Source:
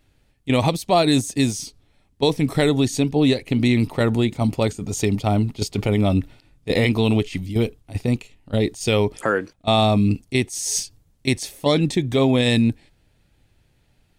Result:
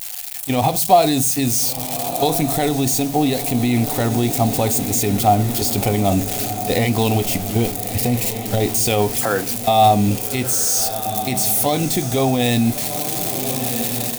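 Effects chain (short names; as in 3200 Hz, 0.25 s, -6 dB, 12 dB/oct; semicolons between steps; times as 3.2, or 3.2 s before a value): switching spikes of -18 dBFS; high shelf 8500 Hz +4.5 dB; diffused feedback echo 1.351 s, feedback 49%, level -12.5 dB; on a send at -12 dB: reverb RT60 0.30 s, pre-delay 4 ms; on the sum: AGC; limiter -6.5 dBFS, peak gain reduction 5.5 dB; bell 740 Hz +14 dB 0.26 oct; gain -3 dB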